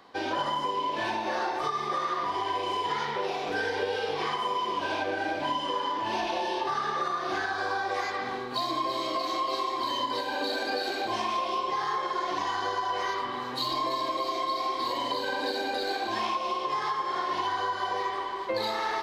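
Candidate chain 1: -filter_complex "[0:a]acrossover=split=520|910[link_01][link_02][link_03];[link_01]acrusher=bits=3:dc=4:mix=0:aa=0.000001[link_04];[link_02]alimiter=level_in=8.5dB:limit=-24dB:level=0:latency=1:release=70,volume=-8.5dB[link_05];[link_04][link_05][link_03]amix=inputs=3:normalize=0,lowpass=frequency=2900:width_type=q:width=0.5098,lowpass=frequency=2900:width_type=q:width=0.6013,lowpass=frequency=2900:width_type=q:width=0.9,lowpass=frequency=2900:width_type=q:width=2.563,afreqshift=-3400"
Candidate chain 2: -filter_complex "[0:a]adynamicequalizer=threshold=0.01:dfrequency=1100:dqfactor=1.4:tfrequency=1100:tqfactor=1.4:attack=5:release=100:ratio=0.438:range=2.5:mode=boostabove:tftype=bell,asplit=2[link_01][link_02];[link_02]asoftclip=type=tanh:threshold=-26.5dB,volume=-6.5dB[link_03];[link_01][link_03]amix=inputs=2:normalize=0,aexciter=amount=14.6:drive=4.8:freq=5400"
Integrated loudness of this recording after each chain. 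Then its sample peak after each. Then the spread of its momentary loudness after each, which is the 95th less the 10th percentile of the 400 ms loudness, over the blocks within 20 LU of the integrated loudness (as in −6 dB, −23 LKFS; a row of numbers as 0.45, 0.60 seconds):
−29.5, −22.5 LKFS; −19.5, −6.5 dBFS; 2, 3 LU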